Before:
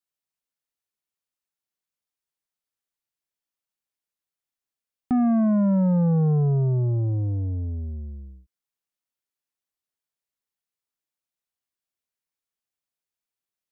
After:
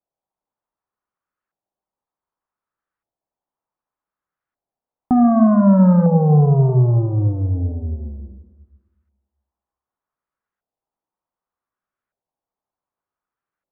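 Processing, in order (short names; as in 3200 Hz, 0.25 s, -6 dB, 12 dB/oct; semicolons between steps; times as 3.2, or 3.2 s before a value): plate-style reverb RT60 1.4 s, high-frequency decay 0.95×, DRR 6 dB; LFO low-pass saw up 0.66 Hz 710–1500 Hz; gain +6 dB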